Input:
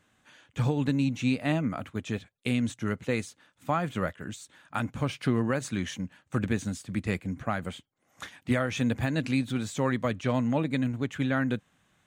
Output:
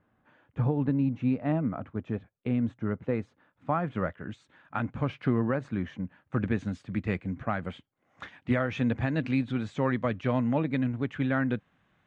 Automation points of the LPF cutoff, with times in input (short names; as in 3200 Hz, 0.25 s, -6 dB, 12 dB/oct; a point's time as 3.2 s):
3.07 s 1200 Hz
4.32 s 2100 Hz
5.08 s 2100 Hz
5.86 s 1400 Hz
6.68 s 2600 Hz